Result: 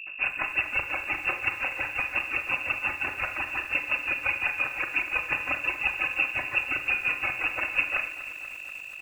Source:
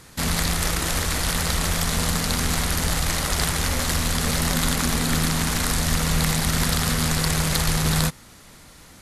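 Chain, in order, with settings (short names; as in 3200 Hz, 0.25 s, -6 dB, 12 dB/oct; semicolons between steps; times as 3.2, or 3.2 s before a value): sample sorter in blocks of 8 samples; HPF 44 Hz 24 dB/oct; reverb removal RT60 1.9 s; comb 4.2 ms, depth 76%; compressor 6:1, threshold -23 dBFS, peak gain reduction 6.5 dB; grains 0.141 s, grains 5.7/s, pitch spread up and down by 0 st; hum 50 Hz, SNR 11 dB; Schroeder reverb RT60 0.49 s, combs from 30 ms, DRR 7 dB; inverted band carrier 2700 Hz; lo-fi delay 0.242 s, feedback 80%, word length 8-bit, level -14 dB; gain +3.5 dB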